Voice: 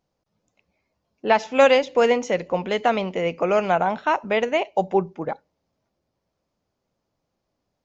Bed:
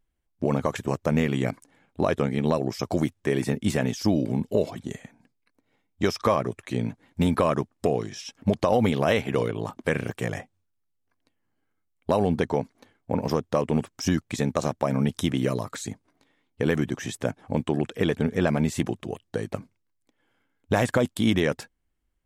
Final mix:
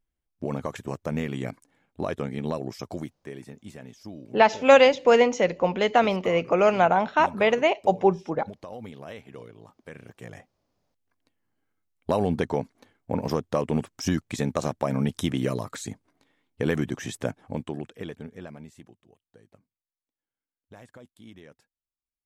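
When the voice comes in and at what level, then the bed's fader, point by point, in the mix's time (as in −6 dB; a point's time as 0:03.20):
3.10 s, +0.5 dB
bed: 0:02.74 −6 dB
0:03.55 −18.5 dB
0:09.90 −18.5 dB
0:11.02 −1.5 dB
0:17.24 −1.5 dB
0:19.02 −26 dB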